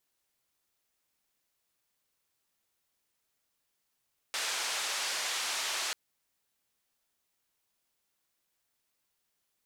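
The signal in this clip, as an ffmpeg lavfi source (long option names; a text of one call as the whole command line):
ffmpeg -f lavfi -i "anoisesrc=color=white:duration=1.59:sample_rate=44100:seed=1,highpass=frequency=680,lowpass=frequency=6400,volume=-23.5dB" out.wav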